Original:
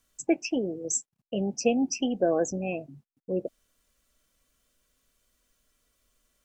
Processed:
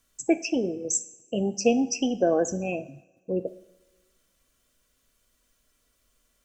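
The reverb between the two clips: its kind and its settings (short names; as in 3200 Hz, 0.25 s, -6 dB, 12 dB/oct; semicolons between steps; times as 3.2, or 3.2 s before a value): two-slope reverb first 0.65 s, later 1.7 s, from -17 dB, DRR 11.5 dB; gain +2 dB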